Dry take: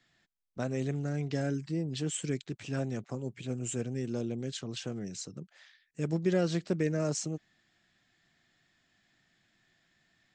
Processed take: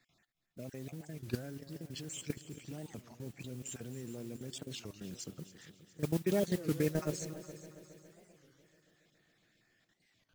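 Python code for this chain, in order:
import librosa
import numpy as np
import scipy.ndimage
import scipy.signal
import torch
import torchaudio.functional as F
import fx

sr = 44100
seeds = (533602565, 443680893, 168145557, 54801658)

y = fx.spec_dropout(x, sr, seeds[0], share_pct=27)
y = fx.level_steps(y, sr, step_db=15)
y = y + 10.0 ** (-22.5 / 20.0) * np.pad(y, (int(251 * sr / 1000.0), 0))[:len(y)]
y = fx.mod_noise(y, sr, seeds[1], snr_db=17)
y = fx.echo_heads(y, sr, ms=138, heads='second and third', feedback_pct=53, wet_db=-16.0)
y = fx.record_warp(y, sr, rpm=33.33, depth_cents=250.0)
y = F.gain(torch.from_numpy(y), 1.0).numpy()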